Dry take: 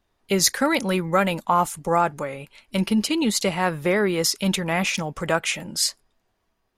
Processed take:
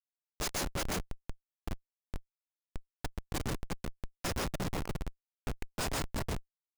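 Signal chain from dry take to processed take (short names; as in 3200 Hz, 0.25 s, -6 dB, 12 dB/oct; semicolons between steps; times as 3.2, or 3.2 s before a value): pre-emphasis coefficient 0.9; on a send: echo 0.353 s -3.5 dB; on the sum: plate-style reverb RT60 0.59 s, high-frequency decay 0.65×, pre-delay 0.11 s, DRR -2 dB; Schmitt trigger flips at -19 dBFS; gain -5 dB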